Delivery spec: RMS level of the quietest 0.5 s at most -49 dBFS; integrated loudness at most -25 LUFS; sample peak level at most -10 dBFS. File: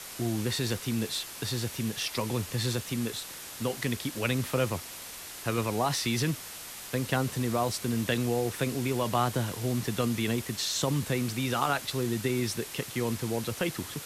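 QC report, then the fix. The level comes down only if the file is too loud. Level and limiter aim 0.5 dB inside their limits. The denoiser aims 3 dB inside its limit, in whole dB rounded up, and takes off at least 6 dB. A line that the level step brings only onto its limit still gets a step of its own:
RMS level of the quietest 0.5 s -43 dBFS: fail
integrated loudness -30.5 LUFS: OK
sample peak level -12.5 dBFS: OK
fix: denoiser 9 dB, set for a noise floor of -43 dBFS

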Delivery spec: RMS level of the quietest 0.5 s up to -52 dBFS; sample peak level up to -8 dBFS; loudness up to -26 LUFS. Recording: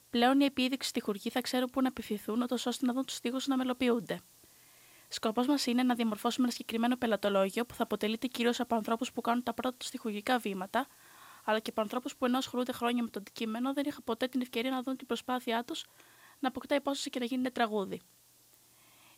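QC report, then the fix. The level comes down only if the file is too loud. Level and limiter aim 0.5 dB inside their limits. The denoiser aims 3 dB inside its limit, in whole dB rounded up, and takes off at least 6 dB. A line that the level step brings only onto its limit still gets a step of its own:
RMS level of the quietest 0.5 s -64 dBFS: OK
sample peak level -17.0 dBFS: OK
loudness -33.0 LUFS: OK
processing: none

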